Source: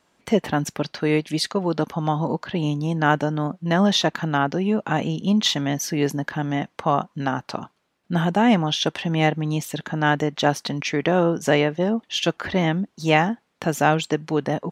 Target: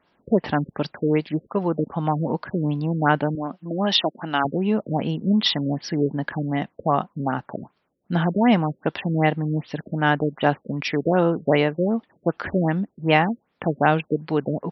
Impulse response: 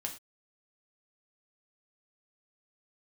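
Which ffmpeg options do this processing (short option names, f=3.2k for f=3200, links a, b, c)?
-filter_complex "[0:a]asettb=1/sr,asplit=3[a][b][c];[a]atrim=end=3.354[d];[b]atrim=start=3.35:end=4.45,asetpts=PTS-STARTPTS,afade=t=in:d=0.004:c=qsin,afade=t=out:st=1.096:d=0.004:c=qsin,highpass=270,equalizer=f=480:t=q:w=4:g=-6,equalizer=f=2.9k:t=q:w=4:g=7,equalizer=f=5.3k:t=q:w=4:g=5,lowpass=f=8k:w=0.5412,lowpass=f=8k:w=1.3066[e];[c]atrim=start=4.446[f];[d][e]acrossfade=d=0.004:c1=hsin:c2=qsin[g];[g][f]acrossfade=d=0.004:c1=qsin:c2=hsin,afftfilt=real='re*lt(b*sr/1024,570*pow(5900/570,0.5+0.5*sin(2*PI*2.6*pts/sr)))':imag='im*lt(b*sr/1024,570*pow(5900/570,0.5+0.5*sin(2*PI*2.6*pts/sr)))':win_size=1024:overlap=0.75"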